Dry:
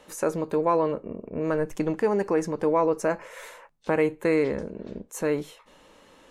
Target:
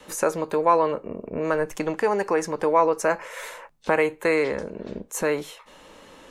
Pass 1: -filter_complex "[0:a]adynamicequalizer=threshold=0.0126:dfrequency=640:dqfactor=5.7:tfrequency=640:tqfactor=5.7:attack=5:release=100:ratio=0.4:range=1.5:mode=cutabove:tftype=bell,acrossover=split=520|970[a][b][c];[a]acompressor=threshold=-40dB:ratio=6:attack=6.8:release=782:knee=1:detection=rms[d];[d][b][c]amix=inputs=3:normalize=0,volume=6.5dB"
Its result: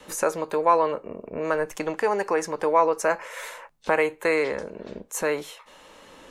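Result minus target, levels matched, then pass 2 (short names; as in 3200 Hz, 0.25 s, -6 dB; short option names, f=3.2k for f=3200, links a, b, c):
compressor: peak gain reduction +5.5 dB
-filter_complex "[0:a]adynamicequalizer=threshold=0.0126:dfrequency=640:dqfactor=5.7:tfrequency=640:tqfactor=5.7:attack=5:release=100:ratio=0.4:range=1.5:mode=cutabove:tftype=bell,acrossover=split=520|970[a][b][c];[a]acompressor=threshold=-33.5dB:ratio=6:attack=6.8:release=782:knee=1:detection=rms[d];[d][b][c]amix=inputs=3:normalize=0,volume=6.5dB"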